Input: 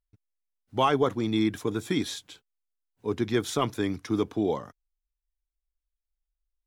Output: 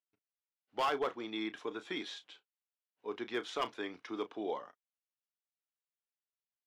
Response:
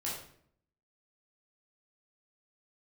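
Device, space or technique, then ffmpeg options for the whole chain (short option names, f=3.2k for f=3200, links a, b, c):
megaphone: -filter_complex "[0:a]highpass=500,lowpass=3.5k,equalizer=f=2.9k:t=o:w=0.22:g=5,asoftclip=type=hard:threshold=-21.5dB,asplit=2[a][b];[b]adelay=33,volume=-13.5dB[c];[a][c]amix=inputs=2:normalize=0,volume=-5.5dB"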